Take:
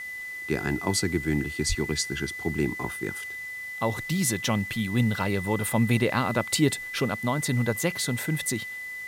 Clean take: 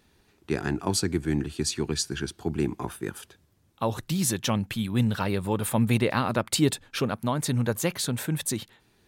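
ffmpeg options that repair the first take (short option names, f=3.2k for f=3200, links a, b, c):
-filter_complex "[0:a]bandreject=f=2k:w=30,asplit=3[a][b][c];[a]afade=t=out:st=1.68:d=0.02[d];[b]highpass=f=140:w=0.5412,highpass=f=140:w=1.3066,afade=t=in:st=1.68:d=0.02,afade=t=out:st=1.8:d=0.02[e];[c]afade=t=in:st=1.8:d=0.02[f];[d][e][f]amix=inputs=3:normalize=0,afwtdn=0.0028"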